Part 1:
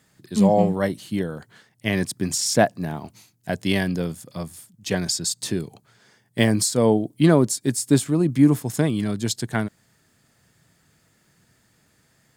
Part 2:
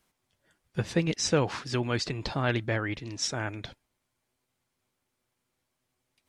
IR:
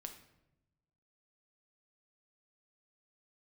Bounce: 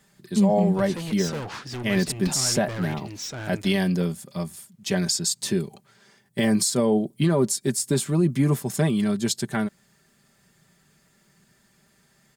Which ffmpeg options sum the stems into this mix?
-filter_complex "[0:a]aecho=1:1:5.1:0.64,volume=-1dB[link_01];[1:a]volume=31.5dB,asoftclip=hard,volume=-31.5dB,volume=1dB[link_02];[link_01][link_02]amix=inputs=2:normalize=0,alimiter=limit=-12dB:level=0:latency=1:release=41"

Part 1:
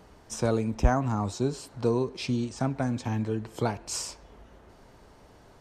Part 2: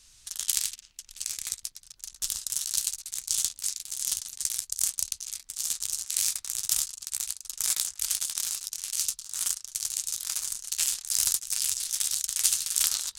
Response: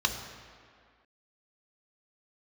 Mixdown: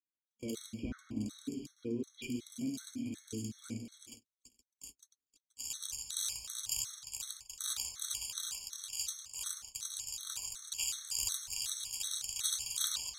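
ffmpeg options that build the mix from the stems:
-filter_complex "[0:a]asplit=3[link_01][link_02][link_03];[link_01]bandpass=frequency=270:width_type=q:width=8,volume=0dB[link_04];[link_02]bandpass=frequency=2290:width_type=q:width=8,volume=-6dB[link_05];[link_03]bandpass=frequency=3010:width_type=q:width=8,volume=-9dB[link_06];[link_04][link_05][link_06]amix=inputs=3:normalize=0,volume=0dB,asplit=2[link_07][link_08];[link_08]volume=-7.5dB[link_09];[1:a]volume=-9dB,afade=type=in:start_time=5.19:duration=0.61:silence=0.251189,asplit=2[link_10][link_11];[link_11]volume=-5dB[link_12];[2:a]atrim=start_sample=2205[link_13];[link_09][link_12]amix=inputs=2:normalize=0[link_14];[link_14][link_13]afir=irnorm=-1:irlink=0[link_15];[link_07][link_10][link_15]amix=inputs=3:normalize=0,agate=range=-44dB:threshold=-46dB:ratio=16:detection=peak,afftfilt=real='re*gt(sin(2*PI*2.7*pts/sr)*(1-2*mod(floor(b*sr/1024/1100),2)),0)':imag='im*gt(sin(2*PI*2.7*pts/sr)*(1-2*mod(floor(b*sr/1024/1100),2)),0)':win_size=1024:overlap=0.75"

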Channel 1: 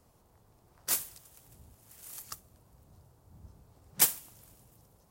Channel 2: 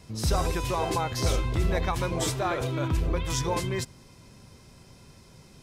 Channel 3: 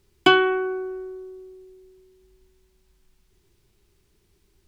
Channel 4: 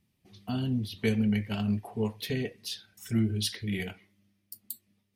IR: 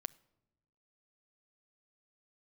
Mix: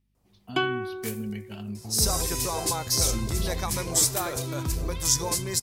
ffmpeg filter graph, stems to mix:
-filter_complex "[0:a]adelay=150,volume=-8.5dB[link_01];[1:a]aexciter=amount=7.4:drive=1.4:freq=4400,adelay=1750,volume=-3dB[link_02];[2:a]adelay=300,volume=-10dB[link_03];[3:a]aeval=exprs='val(0)+0.000631*(sin(2*PI*50*n/s)+sin(2*PI*2*50*n/s)/2+sin(2*PI*3*50*n/s)/3+sin(2*PI*4*50*n/s)/4+sin(2*PI*5*50*n/s)/5)':channel_layout=same,volume=-7.5dB[link_04];[link_01][link_02][link_03][link_04]amix=inputs=4:normalize=0"

